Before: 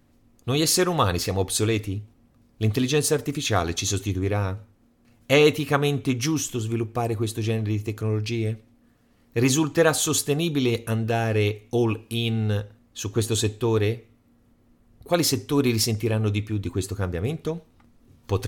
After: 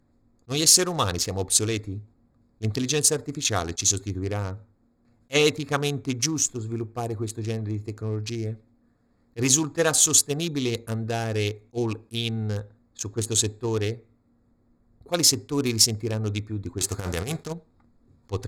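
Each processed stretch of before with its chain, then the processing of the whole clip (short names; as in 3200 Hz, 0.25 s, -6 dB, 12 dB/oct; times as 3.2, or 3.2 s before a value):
16.78–17.52 spectral whitening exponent 0.6 + negative-ratio compressor -27 dBFS, ratio -0.5
whole clip: Wiener smoothing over 15 samples; bell 6900 Hz +13 dB 1.8 oct; attack slew limiter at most 600 dB/s; gain -4 dB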